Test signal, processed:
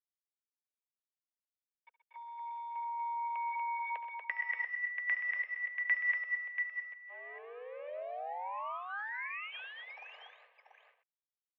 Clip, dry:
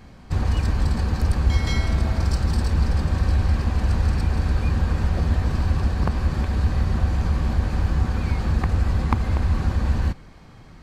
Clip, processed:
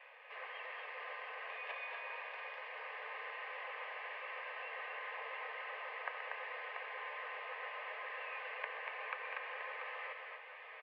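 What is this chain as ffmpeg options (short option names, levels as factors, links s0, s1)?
-af "aderivative,acompressor=threshold=0.00224:ratio=2,flanger=delay=2.9:depth=3.8:regen=82:speed=0.5:shape=sinusoidal,aresample=16000,aeval=exprs='0.0188*sin(PI/2*1.58*val(0)/0.0188)':c=same,aresample=44100,acrusher=bits=9:mix=0:aa=0.000001,aeval=exprs='0.0224*(cos(1*acos(clip(val(0)/0.0224,-1,1)))-cos(1*PI/2))+0.000178*(cos(2*acos(clip(val(0)/0.0224,-1,1)))-cos(2*PI/2))+0.01*(cos(3*acos(clip(val(0)/0.0224,-1,1)))-cos(3*PI/2))+0.000398*(cos(7*acos(clip(val(0)/0.0224,-1,1)))-cos(7*PI/2))':c=same,asuperstop=centerf=1100:order=8:qfactor=5.4,aecho=1:1:70|127|238|686:0.168|0.251|0.631|0.422,highpass=f=170:t=q:w=0.5412,highpass=f=170:t=q:w=1.307,lowpass=f=2300:t=q:w=0.5176,lowpass=f=2300:t=q:w=0.7071,lowpass=f=2300:t=q:w=1.932,afreqshift=290,volume=6.68"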